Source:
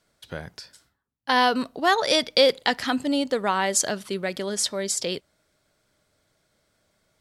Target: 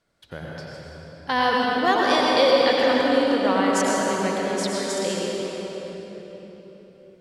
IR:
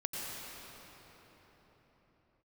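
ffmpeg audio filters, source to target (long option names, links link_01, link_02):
-filter_complex "[0:a]highshelf=frequency=5200:gain=-9.5[link_01];[1:a]atrim=start_sample=2205[link_02];[link_01][link_02]afir=irnorm=-1:irlink=0"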